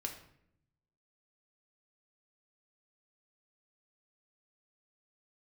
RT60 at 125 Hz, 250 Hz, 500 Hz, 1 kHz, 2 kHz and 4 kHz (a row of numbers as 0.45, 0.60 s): 1.3, 1.1, 0.80, 0.65, 0.65, 0.50 s